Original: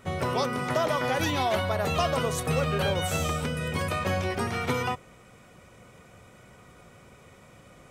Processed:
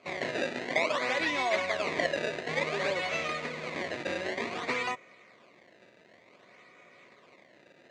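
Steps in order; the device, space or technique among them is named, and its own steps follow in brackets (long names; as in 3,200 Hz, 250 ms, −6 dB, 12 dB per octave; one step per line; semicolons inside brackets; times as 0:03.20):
circuit-bent sampling toy (sample-and-hold swept by an LFO 23×, swing 160% 0.55 Hz; loudspeaker in its box 440–5,500 Hz, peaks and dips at 480 Hz −5 dB, 830 Hz −10 dB, 1,400 Hz −9 dB, 2,100 Hz +7 dB, 3,100 Hz −6 dB, 5,300 Hz −10 dB)
level +2 dB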